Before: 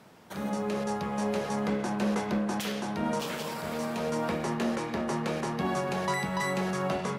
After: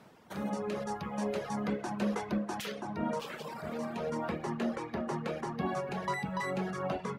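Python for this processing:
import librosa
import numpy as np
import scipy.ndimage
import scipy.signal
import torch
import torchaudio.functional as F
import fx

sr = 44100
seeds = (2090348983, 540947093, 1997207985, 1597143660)

y = fx.dereverb_blind(x, sr, rt60_s=1.3)
y = fx.high_shelf(y, sr, hz=3500.0, db=fx.steps((0.0, -4.5), (2.74, -10.0)))
y = F.gain(torch.from_numpy(y), -1.5).numpy()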